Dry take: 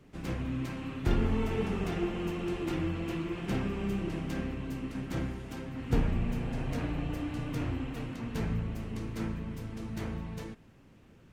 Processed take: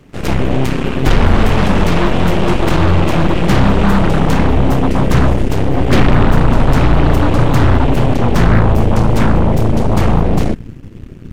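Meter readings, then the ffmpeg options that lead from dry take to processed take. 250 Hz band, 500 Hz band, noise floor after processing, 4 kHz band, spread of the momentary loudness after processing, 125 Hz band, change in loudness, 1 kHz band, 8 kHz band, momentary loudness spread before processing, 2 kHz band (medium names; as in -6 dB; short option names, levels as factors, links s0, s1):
+19.5 dB, +21.0 dB, -31 dBFS, +21.5 dB, 4 LU, +22.0 dB, +21.0 dB, +26.0 dB, +20.5 dB, 8 LU, +22.0 dB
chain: -af "asubboost=boost=5.5:cutoff=230,aeval=exprs='0.75*sin(PI/2*4.47*val(0)/0.75)':c=same,aeval=exprs='0.794*(cos(1*acos(clip(val(0)/0.794,-1,1)))-cos(1*PI/2))+0.316*(cos(8*acos(clip(val(0)/0.794,-1,1)))-cos(8*PI/2))':c=same,volume=0.631"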